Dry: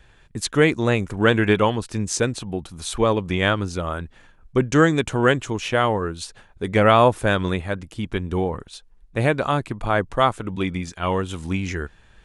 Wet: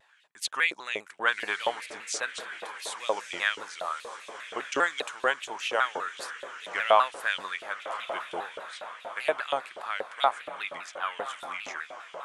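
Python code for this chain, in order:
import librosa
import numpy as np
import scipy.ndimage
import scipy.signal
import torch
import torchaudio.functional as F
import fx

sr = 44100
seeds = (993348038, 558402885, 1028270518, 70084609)

y = fx.echo_diffused(x, sr, ms=1144, feedback_pct=54, wet_db=-11.5)
y = fx.filter_lfo_highpass(y, sr, shape='saw_up', hz=4.2, low_hz=550.0, high_hz=3300.0, q=2.3)
y = fx.vibrato_shape(y, sr, shape='saw_down', rate_hz=5.0, depth_cents=160.0)
y = y * librosa.db_to_amplitude(-8.0)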